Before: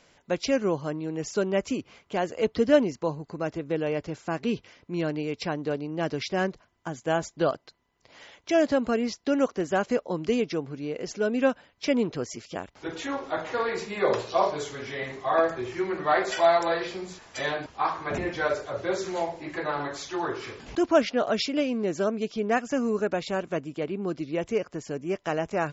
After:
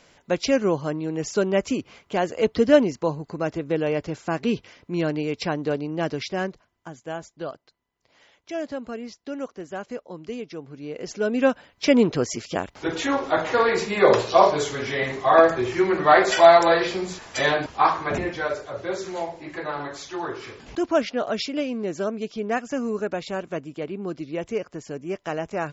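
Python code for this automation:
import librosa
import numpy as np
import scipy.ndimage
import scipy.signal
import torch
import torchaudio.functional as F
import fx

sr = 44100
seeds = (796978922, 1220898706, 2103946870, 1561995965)

y = fx.gain(x, sr, db=fx.line((5.89, 4.0), (7.27, -8.0), (10.47, -8.0), (11.04, 0.5), (12.05, 8.0), (17.87, 8.0), (18.47, -0.5)))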